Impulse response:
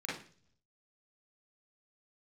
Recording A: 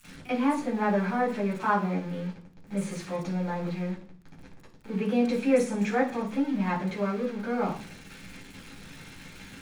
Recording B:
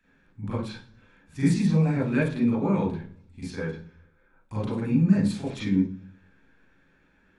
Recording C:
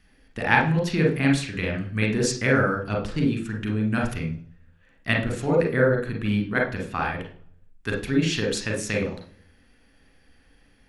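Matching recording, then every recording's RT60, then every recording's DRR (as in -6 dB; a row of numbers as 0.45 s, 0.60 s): B; 0.45 s, 0.45 s, 0.45 s; -17.5 dB, -8.0 dB, 0.5 dB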